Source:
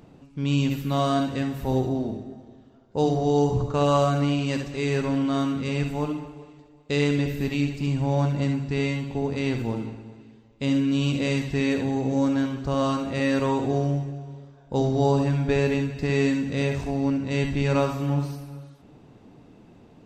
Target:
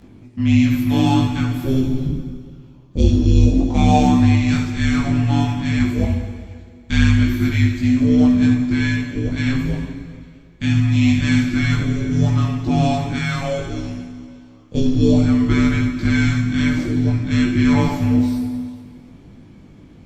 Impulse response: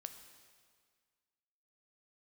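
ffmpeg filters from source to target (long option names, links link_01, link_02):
-filter_complex "[0:a]asettb=1/sr,asplit=3[link_01][link_02][link_03];[link_01]atrim=end=13.164[link_04];[link_02]atrim=start=13.16:end=14.75,asetpts=PTS-STARTPTS,afade=type=in:duration=0.004:curve=qsin,afade=type=out:start_time=1.586:duration=0.004:curve=qsin,highpass=frequency=820:poles=1[link_05];[link_03]atrim=start=14.746[link_06];[link_04][link_05]acrossfade=duration=0.004:curve1=hsin:curve2=qsin[link_07];[link_07][link_06]acrossfade=duration=0.004:curve1=qsin:curve2=hsin,afreqshift=-390,asplit=2[link_08][link_09];[1:a]atrim=start_sample=2205,asetrate=38367,aresample=44100,adelay=20[link_10];[link_09][link_10]afir=irnorm=-1:irlink=0,volume=4.5dB[link_11];[link_08][link_11]amix=inputs=2:normalize=0,volume=4dB" -ar 48000 -c:a libopus -b:a 48k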